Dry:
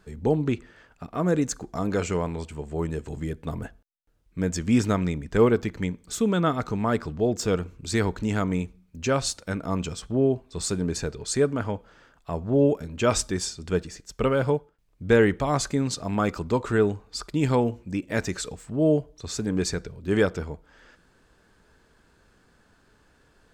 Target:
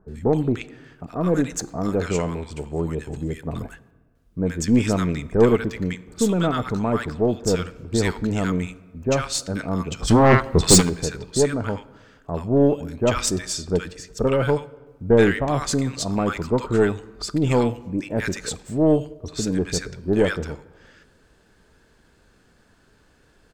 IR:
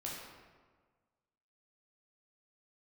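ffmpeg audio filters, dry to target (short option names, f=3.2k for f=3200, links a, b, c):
-filter_complex "[0:a]asplit=3[a][b][c];[a]afade=t=out:st=9.99:d=0.02[d];[b]aeval=exprs='0.251*sin(PI/2*3.55*val(0)/0.251)':c=same,afade=t=in:st=9.99:d=0.02,afade=t=out:st=10.8:d=0.02[e];[c]afade=t=in:st=10.8:d=0.02[f];[d][e][f]amix=inputs=3:normalize=0,acrossover=split=1100[g][h];[h]adelay=80[i];[g][i]amix=inputs=2:normalize=0,asplit=2[j][k];[1:a]atrim=start_sample=2205[l];[k][l]afir=irnorm=-1:irlink=0,volume=-17dB[m];[j][m]amix=inputs=2:normalize=0,aeval=exprs='0.668*(cos(1*acos(clip(val(0)/0.668,-1,1)))-cos(1*PI/2))+0.0335*(cos(6*acos(clip(val(0)/0.668,-1,1)))-cos(6*PI/2))':c=same,volume=2.5dB"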